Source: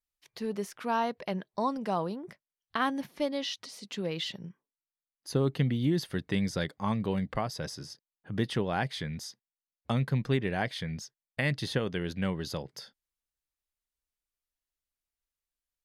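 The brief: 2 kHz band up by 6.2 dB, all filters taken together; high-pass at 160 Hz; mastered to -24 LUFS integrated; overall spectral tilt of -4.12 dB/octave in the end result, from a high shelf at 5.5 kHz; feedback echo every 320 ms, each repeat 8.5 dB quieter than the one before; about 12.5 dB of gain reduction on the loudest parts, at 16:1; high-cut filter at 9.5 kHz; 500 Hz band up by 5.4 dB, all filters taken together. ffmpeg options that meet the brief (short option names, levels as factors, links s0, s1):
-af "highpass=160,lowpass=9500,equalizer=f=500:t=o:g=6.5,equalizer=f=2000:t=o:g=6.5,highshelf=f=5500:g=5.5,acompressor=threshold=0.0251:ratio=16,aecho=1:1:320|640|960|1280:0.376|0.143|0.0543|0.0206,volume=5.01"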